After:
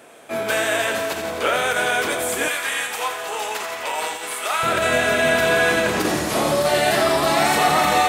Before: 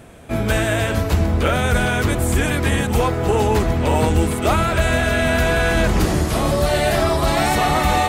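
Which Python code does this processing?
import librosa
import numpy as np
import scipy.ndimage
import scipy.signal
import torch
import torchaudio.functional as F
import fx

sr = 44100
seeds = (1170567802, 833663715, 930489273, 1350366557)

y = fx.doubler(x, sr, ms=26.0, db=-8.0)
y = fx.over_compress(y, sr, threshold_db=-15.0, ratio=-0.5)
y = fx.highpass(y, sr, hz=fx.steps((0.0, 430.0), (2.48, 1000.0), (4.63, 240.0)), slope=12)
y = fx.echo_thinned(y, sr, ms=85, feedback_pct=74, hz=870.0, wet_db=-7.5)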